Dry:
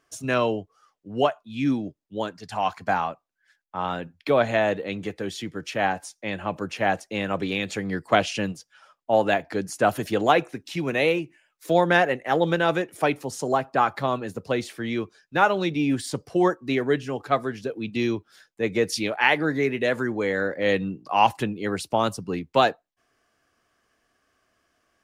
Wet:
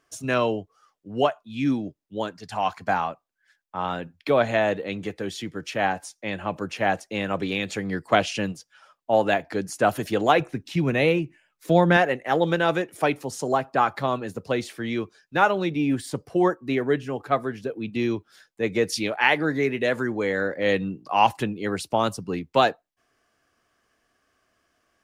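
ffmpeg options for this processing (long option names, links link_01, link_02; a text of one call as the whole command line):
ffmpeg -i in.wav -filter_complex "[0:a]asettb=1/sr,asplit=3[link_01][link_02][link_03];[link_01]atrim=end=10.404[link_04];[link_02]atrim=start=10.4:end=11.97,asetpts=PTS-STARTPTS,afade=type=in:duration=0.004:curve=qsin,afade=type=out:start_time=1.566:duration=0.004:curve=qsin,bass=frequency=250:gain=9,treble=frequency=4000:gain=-3[link_05];[link_03]atrim=start=11.966[link_06];[link_04][link_05]acrossfade=duration=0.004:curve1=hsin:curve2=qsin[link_07];[link_07][link_06]acrossfade=duration=0.004:curve1=qsin:curve2=hsin,asettb=1/sr,asplit=3[link_08][link_09][link_10];[link_08]atrim=end=15.514[link_11];[link_09]atrim=start=15.51:end=18.11,asetpts=PTS-STARTPTS,afade=type=in:duration=0.004:curve=qsin,afade=type=out:start_time=2.596:duration=0.004:curve=qsin,equalizer=frequency=5300:width_type=o:width=1.7:gain=-5.5[link_12];[link_10]atrim=start=18.106[link_13];[link_11][link_12]acrossfade=duration=0.004:curve1=hsin:curve2=qsin[link_14];[link_14][link_13]acrossfade=duration=0.004:curve1=qsin:curve2=hsin" out.wav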